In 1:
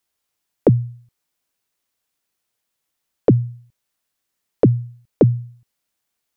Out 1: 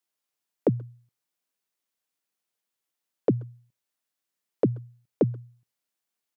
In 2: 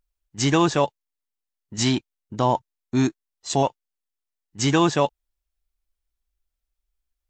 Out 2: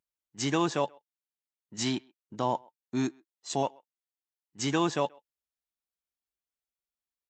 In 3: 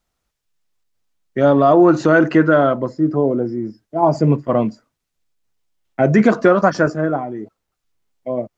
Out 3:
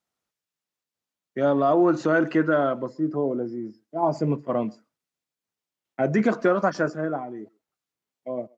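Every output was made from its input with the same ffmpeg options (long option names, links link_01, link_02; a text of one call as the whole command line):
ffmpeg -i in.wav -filter_complex "[0:a]highpass=150,asplit=2[link_01][link_02];[link_02]adelay=130,highpass=300,lowpass=3400,asoftclip=type=hard:threshold=-9.5dB,volume=-27dB[link_03];[link_01][link_03]amix=inputs=2:normalize=0,volume=-8dB" out.wav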